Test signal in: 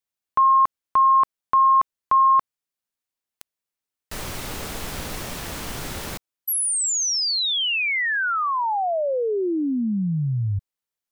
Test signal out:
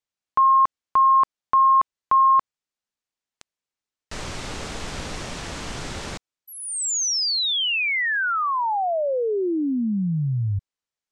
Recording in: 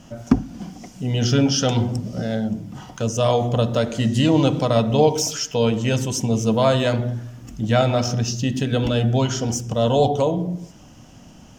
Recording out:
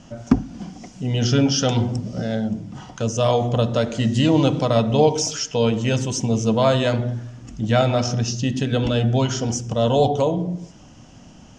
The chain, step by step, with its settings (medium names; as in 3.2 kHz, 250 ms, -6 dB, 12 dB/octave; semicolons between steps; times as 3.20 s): low-pass 8 kHz 24 dB/octave